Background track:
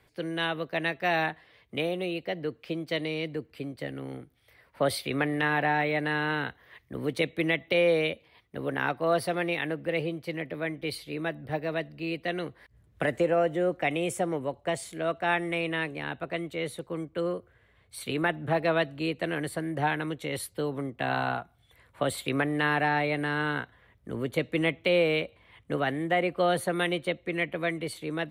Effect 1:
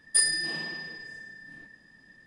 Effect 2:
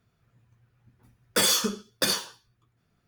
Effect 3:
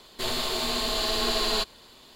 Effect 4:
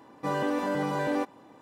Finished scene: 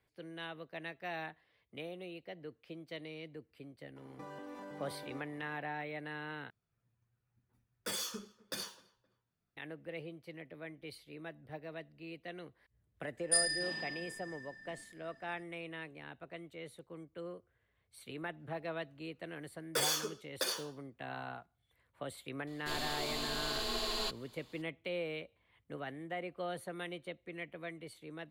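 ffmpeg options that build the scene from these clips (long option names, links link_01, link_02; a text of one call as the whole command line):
ffmpeg -i bed.wav -i cue0.wav -i cue1.wav -i cue2.wav -i cue3.wav -filter_complex "[2:a]asplit=2[link_01][link_02];[0:a]volume=-15dB[link_03];[4:a]acompressor=threshold=-37dB:ratio=6:attack=3.2:release=140:knee=1:detection=peak[link_04];[link_01]asplit=2[link_05][link_06];[link_06]adelay=260,lowpass=frequency=1800:poles=1,volume=-22dB,asplit=2[link_07][link_08];[link_08]adelay=260,lowpass=frequency=1800:poles=1,volume=0.35[link_09];[link_05][link_07][link_09]amix=inputs=3:normalize=0[link_10];[link_02]lowshelf=frequency=270:width_type=q:width=1.5:gain=-14[link_11];[link_03]asplit=2[link_12][link_13];[link_12]atrim=end=6.504[link_14];[link_10]atrim=end=3.07,asetpts=PTS-STARTPTS,volume=-16.5dB[link_15];[link_13]atrim=start=9.566[link_16];[link_04]atrim=end=1.61,asetpts=PTS-STARTPTS,volume=-8dB,afade=type=in:duration=0.004:curve=hsin,afade=type=out:start_time=1.606:duration=0.004:curve=hsin,adelay=3960[link_17];[1:a]atrim=end=2.26,asetpts=PTS-STARTPTS,volume=-7dB,afade=type=in:duration=0.004:curve=hsin,afade=type=out:start_time=2.256:duration=0.004:curve=hsin,adelay=13170[link_18];[link_11]atrim=end=3.07,asetpts=PTS-STARTPTS,volume=-11dB,afade=type=in:duration=0.004:curve=hsin,afade=type=out:start_time=3.066:duration=0.004:curve=hsin,adelay=18390[link_19];[3:a]atrim=end=2.15,asetpts=PTS-STARTPTS,volume=-10.5dB,afade=type=in:duration=0.004:curve=hsin,afade=type=out:start_time=2.146:duration=0.004:curve=hsin,adelay=22470[link_20];[link_14][link_15]acrossfade=duration=0.004:curve1=hsin:curve2=hsin[link_21];[link_21][link_16]acrossfade=duration=0.004:curve1=hsin:curve2=hsin[link_22];[link_22][link_17][link_18][link_19][link_20]amix=inputs=5:normalize=0" out.wav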